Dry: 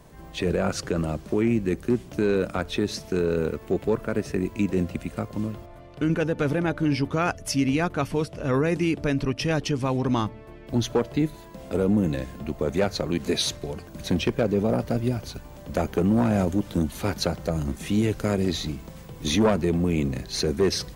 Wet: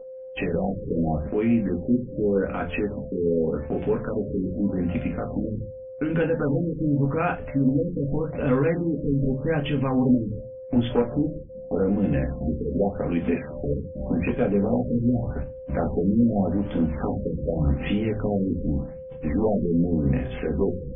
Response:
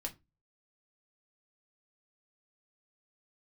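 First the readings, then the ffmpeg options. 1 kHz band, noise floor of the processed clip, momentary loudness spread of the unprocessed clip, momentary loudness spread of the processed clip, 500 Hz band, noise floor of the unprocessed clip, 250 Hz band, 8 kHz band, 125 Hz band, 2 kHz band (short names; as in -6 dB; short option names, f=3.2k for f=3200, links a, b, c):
-2.0 dB, -39 dBFS, 9 LU, 7 LU, +0.5 dB, -44 dBFS, +1.5 dB, under -40 dB, +1.0 dB, -3.0 dB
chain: -filter_complex "[0:a]agate=range=-34dB:threshold=-37dB:ratio=16:detection=peak,alimiter=limit=-22dB:level=0:latency=1:release=142,aexciter=amount=8:drive=3.2:freq=5.1k,aeval=exprs='val(0)+0.00631*sin(2*PI*520*n/s)':c=same,asuperstop=centerf=5200:order=4:qfactor=1.4[a];[1:a]atrim=start_sample=2205,asetrate=37044,aresample=44100[b];[a][b]afir=irnorm=-1:irlink=0,afftfilt=real='re*lt(b*sr/1024,510*pow(3600/510,0.5+0.5*sin(2*PI*0.85*pts/sr)))':imag='im*lt(b*sr/1024,510*pow(3600/510,0.5+0.5*sin(2*PI*0.85*pts/sr)))':win_size=1024:overlap=0.75,volume=7dB"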